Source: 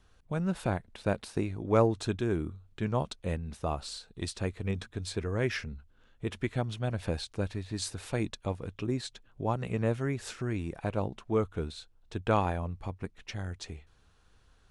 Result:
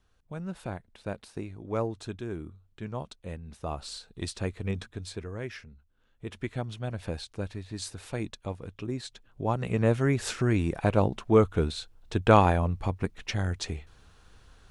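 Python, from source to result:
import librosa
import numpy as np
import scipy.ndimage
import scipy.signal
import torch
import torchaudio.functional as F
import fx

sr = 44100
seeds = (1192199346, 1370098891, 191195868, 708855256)

y = fx.gain(x, sr, db=fx.line((3.37, -6.0), (3.95, 1.0), (4.78, 1.0), (5.74, -11.0), (6.44, -2.0), (8.93, -2.0), (10.24, 8.0)))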